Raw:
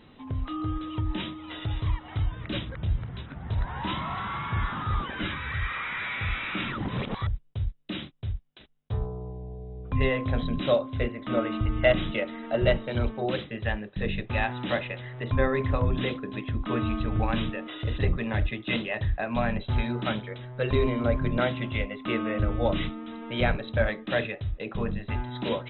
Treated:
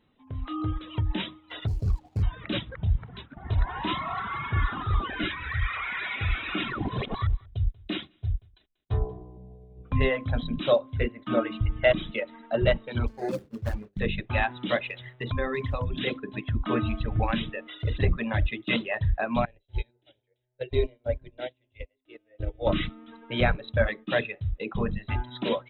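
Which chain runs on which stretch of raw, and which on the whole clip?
1.67–2.23 s: median filter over 25 samples + peaking EQ 1.2 kHz -8.5 dB 1.2 oct + loudspeaker Doppler distortion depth 0.83 ms
3.37–9.37 s: comb 2.8 ms, depth 36% + delay 188 ms -14 dB
13.07–14.00 s: median filter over 41 samples + hum notches 50/100/150/200/250/300/350/400/450/500 Hz + doubling 21 ms -12.5 dB
14.84–16.07 s: treble shelf 3.3 kHz +10 dB + compression 2:1, threshold -30 dBFS
19.45–22.67 s: static phaser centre 480 Hz, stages 4 + upward expansion 2.5:1, over -34 dBFS
whole clip: gate -39 dBFS, range -8 dB; level rider gain up to 9.5 dB; reverb removal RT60 2 s; trim -6.5 dB

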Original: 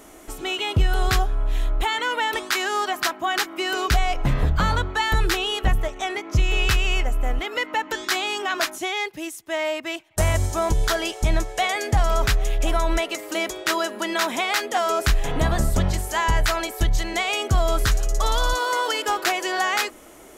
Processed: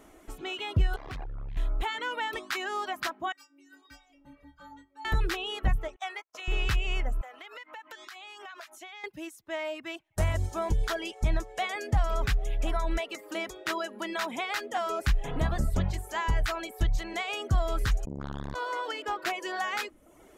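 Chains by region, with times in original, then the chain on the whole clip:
0.96–1.57 s: low-pass 3 kHz + hard clipper -28 dBFS + tape noise reduction on one side only decoder only
3.32–5.05 s: high-pass 71 Hz + inharmonic resonator 280 Hz, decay 0.63 s, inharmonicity 0.008
5.96–6.48 s: gate -32 dBFS, range -53 dB + high-pass 550 Hz 24 dB/octave + upward compressor, threshold -36 dBFS
7.21–9.04 s: high-pass 650 Hz + compression 8:1, threshold -32 dBFS
18.05–19.26 s: low-pass 3.8 kHz 6 dB/octave + transformer saturation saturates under 430 Hz
whole clip: tone controls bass +3 dB, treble -6 dB; reverb removal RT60 0.56 s; trim -8 dB

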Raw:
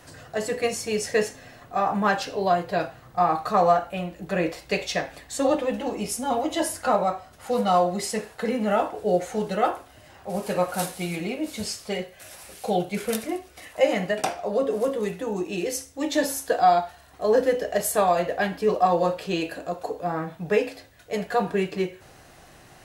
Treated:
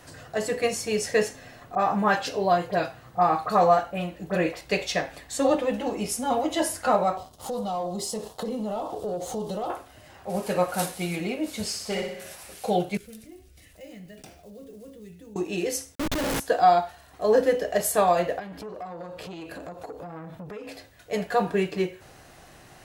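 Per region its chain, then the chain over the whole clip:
1.75–4.61 s: high-pass 45 Hz + phase dispersion highs, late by 45 ms, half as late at 2.1 kHz
7.17–9.70 s: waveshaping leveller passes 2 + high-order bell 1.9 kHz -14.5 dB 1.1 oct + compression 4:1, threshold -30 dBFS
11.67–12.33 s: hard clipper -23.5 dBFS + flutter echo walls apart 10.7 m, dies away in 0.75 s
12.97–15.36 s: block-companded coder 5-bit + amplifier tone stack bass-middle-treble 10-0-1 + level flattener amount 50%
15.95–16.40 s: high-pass 280 Hz + band-stop 710 Hz, Q 18 + Schmitt trigger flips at -26.5 dBFS
18.39–20.69 s: bass shelf 400 Hz +7 dB + compression 16:1, threshold -32 dBFS + transformer saturation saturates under 690 Hz
whole clip: none

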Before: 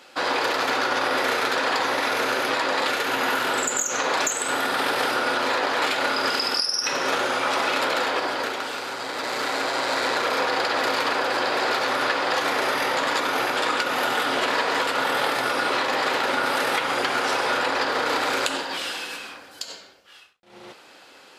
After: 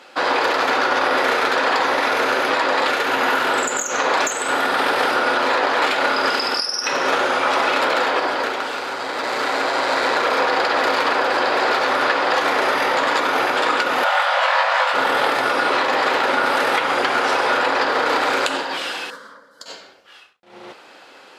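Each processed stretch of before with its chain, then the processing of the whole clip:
14.04–14.94 s: brick-wall FIR high-pass 500 Hz + treble shelf 7.8 kHz -11.5 dB + doubling 21 ms -3 dB
19.10–19.66 s: treble shelf 4.1 kHz -7 dB + static phaser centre 510 Hz, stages 8 + upward expansion, over -49 dBFS
whole clip: high-pass 830 Hz 6 dB/octave; tilt EQ -3 dB/octave; trim +8 dB

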